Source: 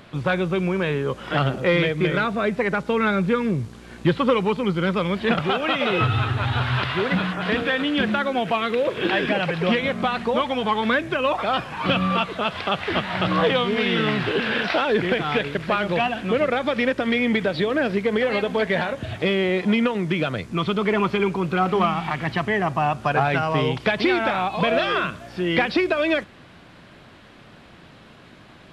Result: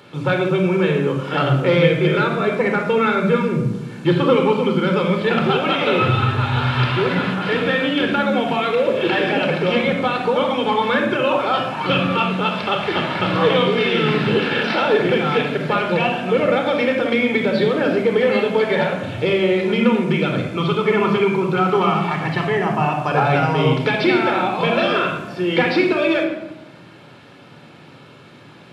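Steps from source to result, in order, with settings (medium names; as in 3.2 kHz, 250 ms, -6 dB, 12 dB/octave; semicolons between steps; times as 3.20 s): high-pass 120 Hz 24 dB/octave; band-stop 1.9 kHz, Q 15; simulated room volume 3800 m³, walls furnished, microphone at 4.3 m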